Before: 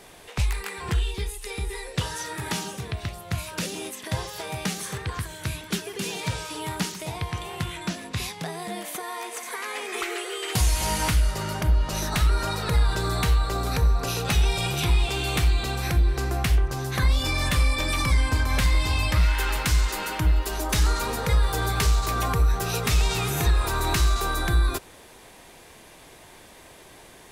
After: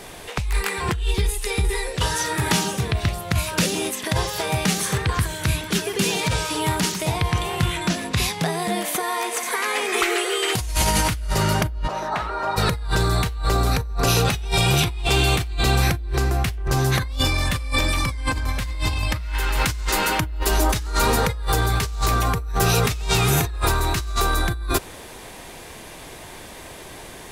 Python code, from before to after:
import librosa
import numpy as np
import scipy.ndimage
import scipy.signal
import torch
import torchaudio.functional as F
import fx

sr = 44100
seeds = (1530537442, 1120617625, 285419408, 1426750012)

y = fx.bandpass_q(x, sr, hz=840.0, q=1.4, at=(11.87, 12.56), fade=0.02)
y = fx.low_shelf(y, sr, hz=140.0, db=3.0)
y = fx.over_compress(y, sr, threshold_db=-26.0, ratio=-1.0)
y = F.gain(torch.from_numpy(y), 4.5).numpy()